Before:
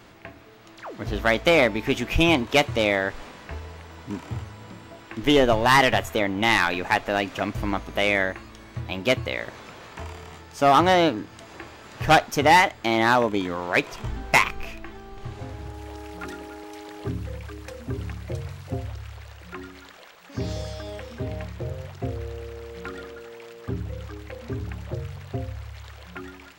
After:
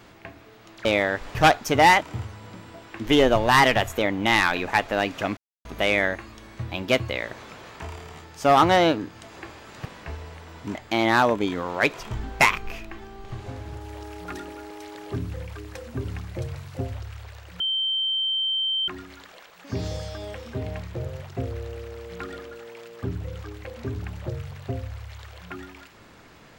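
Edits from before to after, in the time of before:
0.85–2.78 s: delete
3.28–4.18 s: swap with 12.02–12.68 s
7.54–7.82 s: mute
19.53 s: add tone 3.12 kHz -22 dBFS 1.28 s

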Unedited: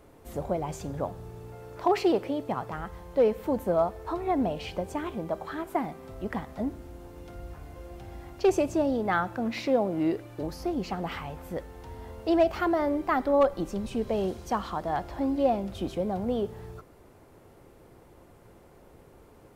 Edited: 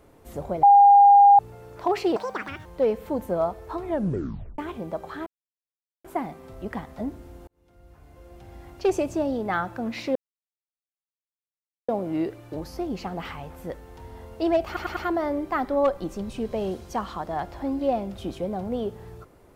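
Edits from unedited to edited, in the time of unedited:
0.63–1.39 s: bleep 807 Hz -9.5 dBFS
2.16–3.03 s: speed 176%
4.22 s: tape stop 0.74 s
5.64 s: insert silence 0.78 s
7.07–8.38 s: fade in
9.75 s: insert silence 1.73 s
12.53 s: stutter 0.10 s, 4 plays

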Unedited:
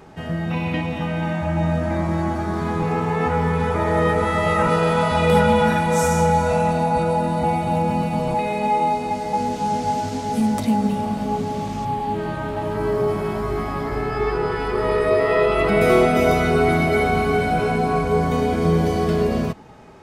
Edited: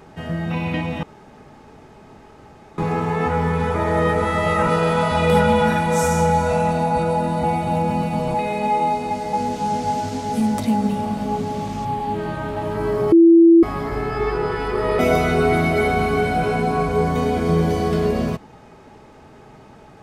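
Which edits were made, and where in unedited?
1.03–2.78 s: room tone
13.12–13.63 s: bleep 334 Hz -6.5 dBFS
14.99–16.15 s: delete

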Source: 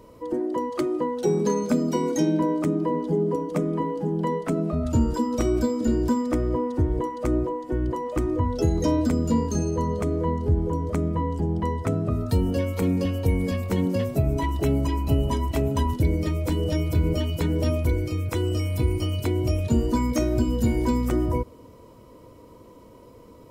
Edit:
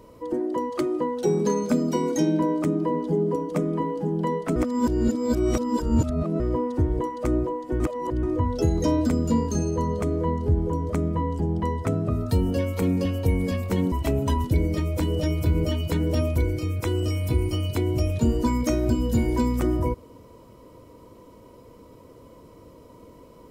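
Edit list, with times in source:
4.56–6.40 s: reverse
7.80–8.23 s: reverse
13.92–15.41 s: delete

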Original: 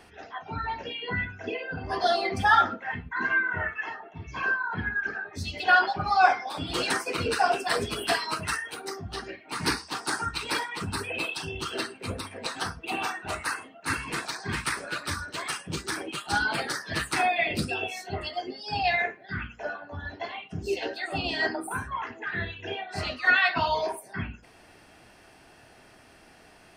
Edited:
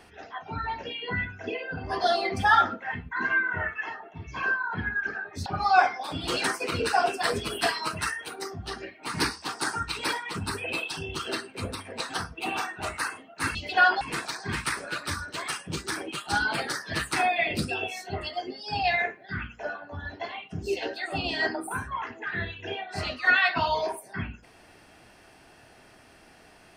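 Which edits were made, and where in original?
5.46–5.92 s: move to 14.01 s

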